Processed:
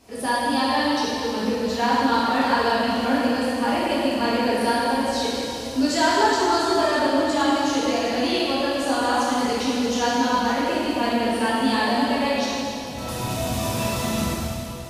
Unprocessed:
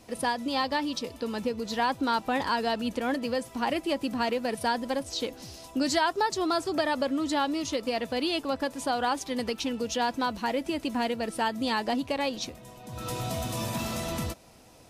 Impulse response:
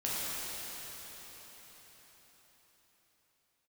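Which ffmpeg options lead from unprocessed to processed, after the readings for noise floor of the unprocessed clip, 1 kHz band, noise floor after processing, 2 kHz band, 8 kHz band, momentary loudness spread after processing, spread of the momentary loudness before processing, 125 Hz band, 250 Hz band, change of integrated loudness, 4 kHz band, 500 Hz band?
-49 dBFS, +7.5 dB, -31 dBFS, +8.0 dB, +7.0 dB, 6 LU, 6 LU, +7.0 dB, +8.0 dB, +7.5 dB, +7.0 dB, +7.0 dB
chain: -filter_complex "[1:a]atrim=start_sample=2205,asetrate=79380,aresample=44100[s0];[0:a][s0]afir=irnorm=-1:irlink=0,volume=1.78"

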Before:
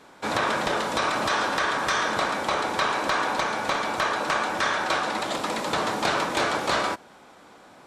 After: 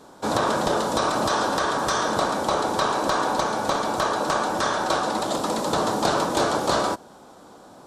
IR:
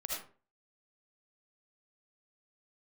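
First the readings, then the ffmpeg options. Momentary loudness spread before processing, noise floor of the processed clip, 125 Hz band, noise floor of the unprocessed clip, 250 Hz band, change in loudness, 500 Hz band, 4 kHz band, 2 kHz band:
3 LU, -48 dBFS, +5.5 dB, -51 dBFS, +5.0 dB, +1.5 dB, +4.5 dB, 0.0 dB, -3.5 dB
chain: -af "equalizer=f=2200:t=o:w=1.1:g=-15,volume=1.88"

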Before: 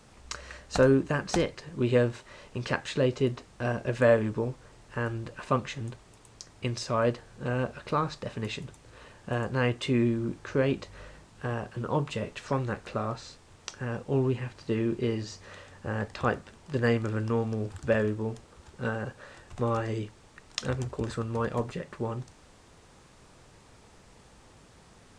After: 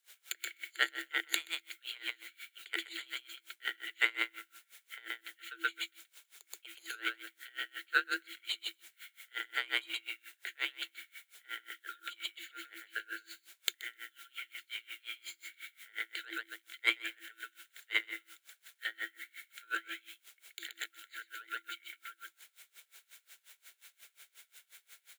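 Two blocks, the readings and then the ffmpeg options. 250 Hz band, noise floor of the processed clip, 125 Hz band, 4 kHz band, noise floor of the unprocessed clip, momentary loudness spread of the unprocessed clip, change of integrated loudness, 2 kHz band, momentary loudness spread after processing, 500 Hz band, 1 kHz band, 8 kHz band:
-27.0 dB, -77 dBFS, under -40 dB, +3.0 dB, -56 dBFS, 15 LU, -8.5 dB, +1.0 dB, 23 LU, -28.5 dB, -11.5 dB, -3.0 dB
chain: -filter_complex "[0:a]afftfilt=real='re*between(b*sr/4096,1000,7100)':imag='im*between(b*sr/4096,1000,7100)':win_size=4096:overlap=0.75,aeval=exprs='0.299*(cos(1*acos(clip(val(0)/0.299,-1,1)))-cos(1*PI/2))+0.00299*(cos(2*acos(clip(val(0)/0.299,-1,1)))-cos(2*PI/2))+0.0211*(cos(7*acos(clip(val(0)/0.299,-1,1)))-cos(7*PI/2))+0.0106*(cos(8*acos(clip(val(0)/0.299,-1,1)))-cos(8*PI/2))':c=same,asuperstop=centerf=5200:order=4:qfactor=1.5,equalizer=f=1900:t=o:w=0.2:g=10,asplit=2[s0][s1];[s1]aecho=0:1:127|254|381:0.596|0.0953|0.0152[s2];[s0][s2]amix=inputs=2:normalize=0,acrusher=bits=10:mix=0:aa=0.000001,aexciter=amount=3.2:drive=1.2:freq=2700,acontrast=45,afreqshift=330,aeval=exprs='val(0)*pow(10,-27*(0.5-0.5*cos(2*PI*5.6*n/s))/20)':c=same"

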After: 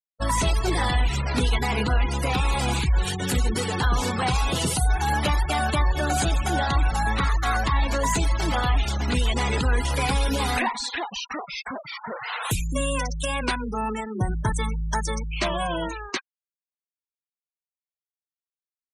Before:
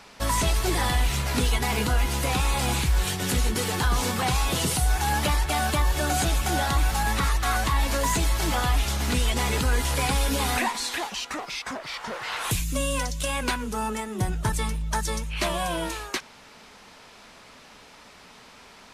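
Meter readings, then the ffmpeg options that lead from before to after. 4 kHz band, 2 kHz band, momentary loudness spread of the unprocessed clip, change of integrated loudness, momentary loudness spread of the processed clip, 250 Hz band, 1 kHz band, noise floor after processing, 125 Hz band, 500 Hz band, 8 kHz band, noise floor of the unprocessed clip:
-1.0 dB, +0.5 dB, 6 LU, +0.5 dB, 7 LU, +1.5 dB, +1.5 dB, under -85 dBFS, +1.5 dB, +1.5 dB, -3.0 dB, -50 dBFS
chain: -af "afftfilt=real='re*gte(hypot(re,im),0.0355)':imag='im*gte(hypot(re,im),0.0355)':win_size=1024:overlap=0.75,volume=1.19"

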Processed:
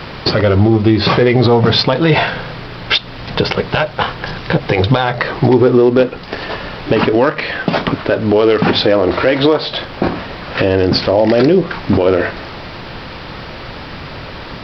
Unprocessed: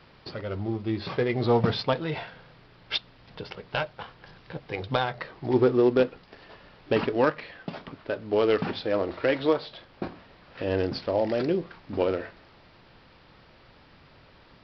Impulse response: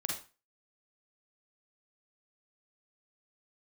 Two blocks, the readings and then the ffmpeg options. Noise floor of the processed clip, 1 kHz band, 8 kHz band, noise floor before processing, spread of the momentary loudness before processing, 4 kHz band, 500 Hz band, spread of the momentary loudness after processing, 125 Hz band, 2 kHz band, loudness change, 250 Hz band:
-30 dBFS, +14.5 dB, no reading, -55 dBFS, 17 LU, +18.0 dB, +13.0 dB, 18 LU, +17.5 dB, +16.5 dB, +13.5 dB, +15.0 dB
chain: -af "acompressor=threshold=0.0224:ratio=2.5,alimiter=level_in=22.4:limit=0.891:release=50:level=0:latency=1,volume=0.891"

